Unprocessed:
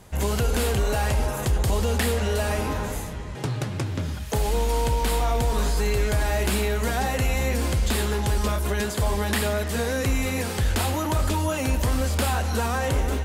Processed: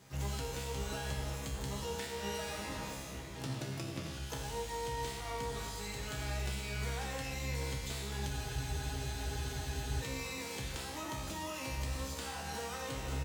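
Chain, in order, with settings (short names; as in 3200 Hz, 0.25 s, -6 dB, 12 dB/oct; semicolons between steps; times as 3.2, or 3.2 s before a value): HPF 48 Hz 24 dB/oct; pre-emphasis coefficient 0.8; notch 1600 Hz, Q 21; comb 6.1 ms, depth 43%; compressor 6:1, threshold -37 dBFS, peak gain reduction 10.5 dB; air absorption 100 m; resonator 67 Hz, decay 1.4 s, harmonics all, mix 90%; feedback echo 87 ms, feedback 23%, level -15 dB; harmoniser +12 st -7 dB; spectral freeze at 8.31, 1.70 s; gain +16 dB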